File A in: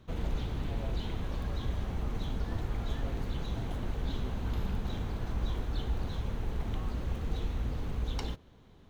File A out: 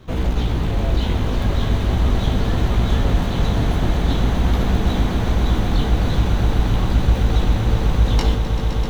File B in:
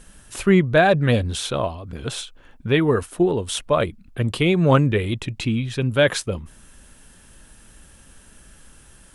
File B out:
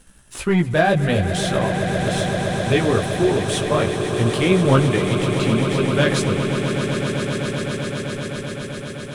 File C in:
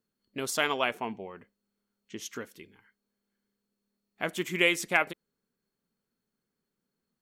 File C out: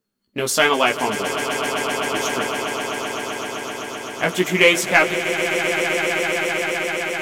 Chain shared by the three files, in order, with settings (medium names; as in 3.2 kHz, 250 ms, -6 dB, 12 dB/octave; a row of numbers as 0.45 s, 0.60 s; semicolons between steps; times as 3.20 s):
waveshaping leveller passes 1; chorus 0.42 Hz, delay 15.5 ms, depth 4.3 ms; echo with a slow build-up 129 ms, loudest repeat 8, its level -11.5 dB; normalise loudness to -20 LUFS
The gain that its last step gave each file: +14.0 dB, -0.5 dB, +11.0 dB